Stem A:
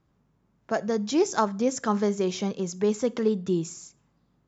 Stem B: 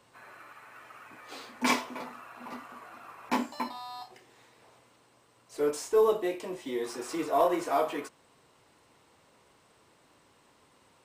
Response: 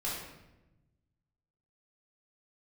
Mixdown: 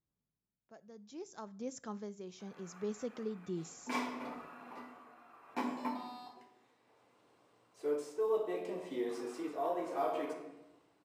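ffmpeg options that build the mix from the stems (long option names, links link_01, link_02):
-filter_complex "[0:a]volume=-2.5dB,afade=type=in:start_time=1.42:duration=0.36:silence=0.398107,afade=type=in:start_time=3.39:duration=0.47:silence=0.266073,asplit=2[link_01][link_02];[1:a]highpass=frequency=200:poles=1,highshelf=frequency=3300:gain=-10,adelay=2250,volume=-5.5dB,asplit=2[link_03][link_04];[link_04]volume=-5dB[link_05];[link_02]apad=whole_len=586305[link_06];[link_03][link_06]sidechaincompress=threshold=-43dB:ratio=8:attack=16:release=203[link_07];[2:a]atrim=start_sample=2205[link_08];[link_05][link_08]afir=irnorm=-1:irlink=0[link_09];[link_01][link_07][link_09]amix=inputs=3:normalize=0,equalizer=frequency=1400:width_type=o:width=2:gain=-3,tremolo=f=0.67:d=0.55"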